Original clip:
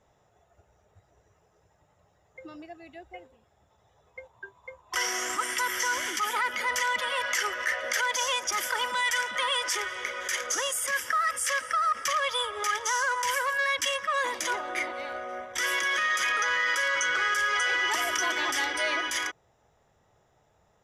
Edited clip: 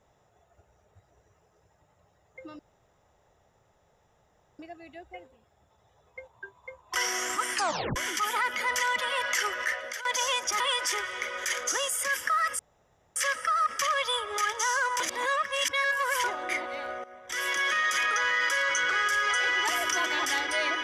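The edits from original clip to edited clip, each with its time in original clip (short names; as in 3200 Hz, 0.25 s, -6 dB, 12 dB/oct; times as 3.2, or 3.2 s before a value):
2.59 insert room tone 2.00 s
5.54 tape stop 0.42 s
7.62–8.05 fade out, to -15.5 dB
8.6–9.43 cut
11.42 insert room tone 0.57 s
13.26–14.5 reverse
15.3–15.87 fade in, from -16 dB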